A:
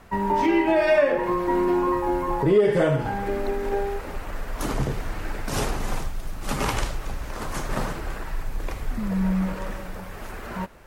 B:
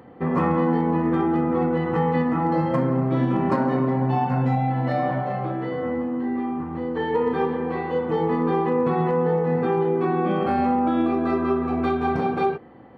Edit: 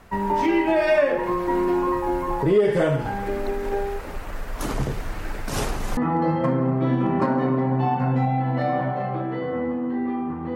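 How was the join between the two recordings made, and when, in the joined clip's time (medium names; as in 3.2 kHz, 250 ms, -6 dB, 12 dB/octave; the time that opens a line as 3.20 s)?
A
5.97 s: go over to B from 2.27 s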